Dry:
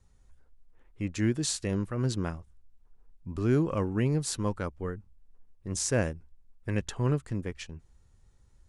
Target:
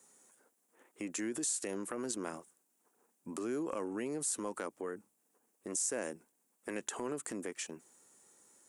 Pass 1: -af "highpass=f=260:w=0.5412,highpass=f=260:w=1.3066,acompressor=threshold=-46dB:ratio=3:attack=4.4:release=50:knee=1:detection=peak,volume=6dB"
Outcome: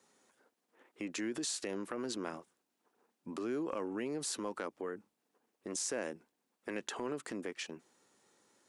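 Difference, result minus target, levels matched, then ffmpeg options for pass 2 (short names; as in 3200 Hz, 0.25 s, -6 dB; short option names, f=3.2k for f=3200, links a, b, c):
8000 Hz band -3.0 dB
-af "highpass=f=260:w=0.5412,highpass=f=260:w=1.3066,highshelf=f=6k:t=q:w=1.5:g=10.5,acompressor=threshold=-46dB:ratio=3:attack=4.4:release=50:knee=1:detection=peak,volume=6dB"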